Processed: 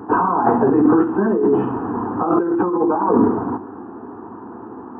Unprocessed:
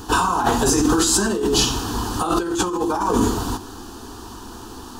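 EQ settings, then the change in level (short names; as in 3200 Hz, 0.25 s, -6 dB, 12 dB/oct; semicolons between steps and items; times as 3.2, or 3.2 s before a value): Gaussian blur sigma 7 samples; Bessel high-pass 190 Hz, order 4; +6.5 dB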